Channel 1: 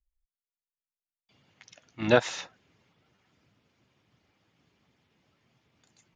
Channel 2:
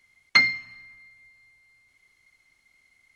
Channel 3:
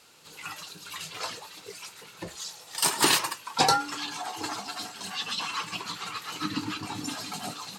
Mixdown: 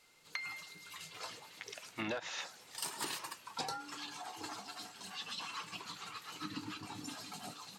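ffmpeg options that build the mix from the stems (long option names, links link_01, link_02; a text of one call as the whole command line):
ffmpeg -i stem1.wav -i stem2.wav -i stem3.wav -filter_complex "[0:a]asplit=2[link_01][link_02];[link_02]highpass=frequency=720:poles=1,volume=19dB,asoftclip=type=tanh:threshold=-5.5dB[link_03];[link_01][link_03]amix=inputs=2:normalize=0,lowpass=frequency=4000:poles=1,volume=-6dB,volume=-5.5dB[link_04];[1:a]acompressor=threshold=-25dB:ratio=6,highpass=580,volume=-10dB[link_05];[2:a]volume=-11dB[link_06];[link_04][link_05][link_06]amix=inputs=3:normalize=0,acompressor=threshold=-36dB:ratio=16" out.wav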